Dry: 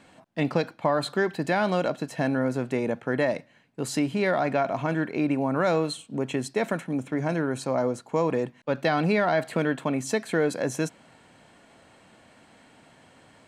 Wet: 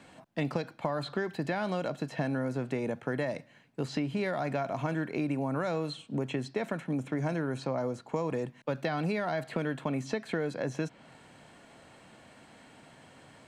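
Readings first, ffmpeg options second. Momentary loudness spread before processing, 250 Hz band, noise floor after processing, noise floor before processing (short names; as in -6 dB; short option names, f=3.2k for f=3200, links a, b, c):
6 LU, -6.0 dB, -58 dBFS, -57 dBFS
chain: -filter_complex "[0:a]acrossover=split=120|5600[a][b][c];[a]acompressor=threshold=-46dB:ratio=4[d];[b]acompressor=threshold=-30dB:ratio=4[e];[c]acompressor=threshold=-56dB:ratio=4[f];[d][e][f]amix=inputs=3:normalize=0,equalizer=f=140:t=o:w=0.23:g=4,acrossover=split=5700[g][h];[h]alimiter=level_in=25.5dB:limit=-24dB:level=0:latency=1:release=212,volume=-25.5dB[i];[g][i]amix=inputs=2:normalize=0"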